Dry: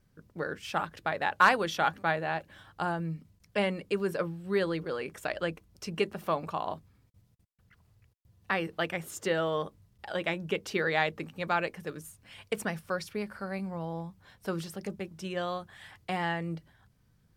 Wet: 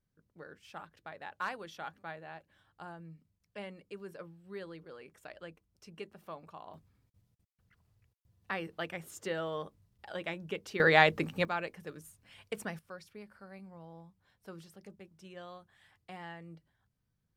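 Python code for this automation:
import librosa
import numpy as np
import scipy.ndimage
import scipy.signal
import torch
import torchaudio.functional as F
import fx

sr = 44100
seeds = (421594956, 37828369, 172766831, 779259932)

y = fx.gain(x, sr, db=fx.steps((0.0, -15.5), (6.74, -7.0), (10.8, 5.0), (11.45, -6.5), (12.79, -14.5)))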